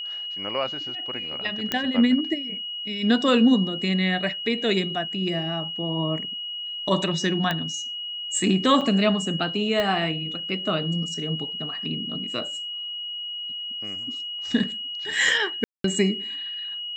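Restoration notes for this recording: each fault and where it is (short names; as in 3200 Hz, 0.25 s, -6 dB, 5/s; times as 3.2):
tone 2900 Hz -30 dBFS
1.72 pop -9 dBFS
7.51 pop -12 dBFS
8.81–8.82 gap 5.1 ms
9.8 pop -12 dBFS
15.64–15.84 gap 0.203 s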